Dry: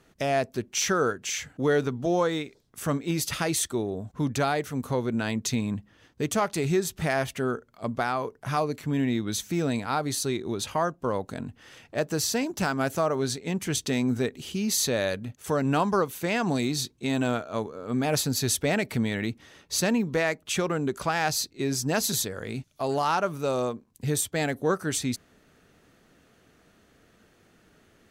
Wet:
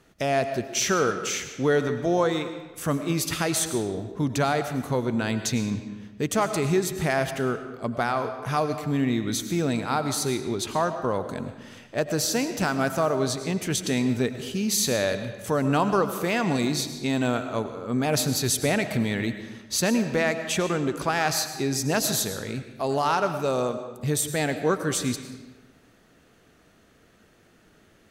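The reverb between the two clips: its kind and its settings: digital reverb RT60 1.2 s, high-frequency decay 0.8×, pre-delay 65 ms, DRR 9 dB; gain +1.5 dB

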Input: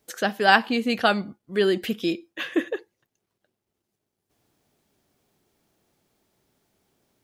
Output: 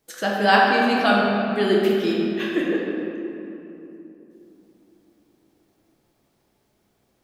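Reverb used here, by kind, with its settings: shoebox room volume 140 m³, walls hard, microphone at 0.66 m; gain -2.5 dB

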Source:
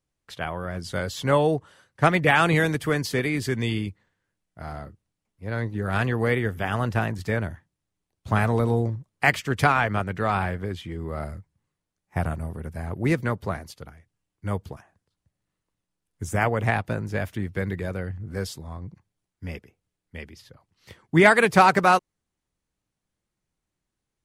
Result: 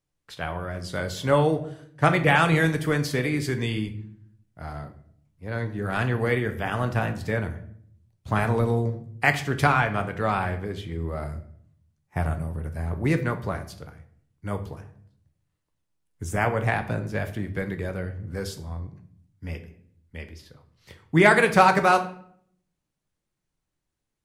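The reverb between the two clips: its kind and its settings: shoebox room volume 100 m³, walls mixed, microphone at 0.37 m; gain -1.5 dB

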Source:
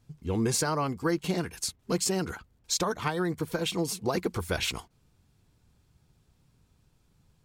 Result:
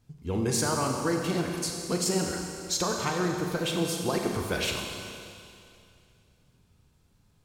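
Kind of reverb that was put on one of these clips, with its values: Schroeder reverb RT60 2.5 s, combs from 30 ms, DRR 1.5 dB; gain -1 dB

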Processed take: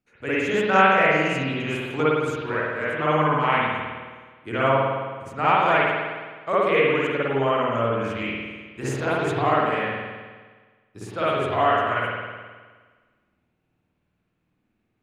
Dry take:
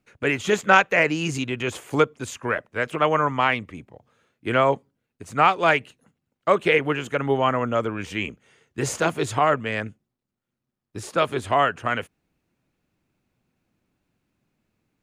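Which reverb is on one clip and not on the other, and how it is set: spring tank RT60 1.5 s, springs 52 ms, chirp 55 ms, DRR -9.5 dB; gain -9.5 dB

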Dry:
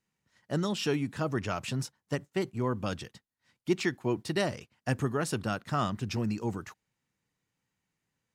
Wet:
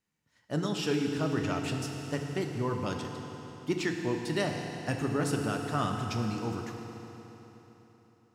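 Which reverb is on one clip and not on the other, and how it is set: FDN reverb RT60 3.8 s, high-frequency decay 0.9×, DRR 2 dB; gain -2 dB

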